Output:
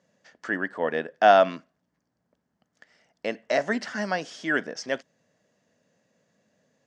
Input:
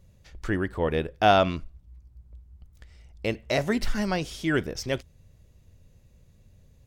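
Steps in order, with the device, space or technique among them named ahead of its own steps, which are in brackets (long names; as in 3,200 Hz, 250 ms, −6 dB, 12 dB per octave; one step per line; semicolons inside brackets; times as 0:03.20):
television speaker (loudspeaker in its box 220–6,900 Hz, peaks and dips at 360 Hz −8 dB, 660 Hz +5 dB, 1,700 Hz +8 dB, 2,400 Hz −5 dB, 3,800 Hz −6 dB)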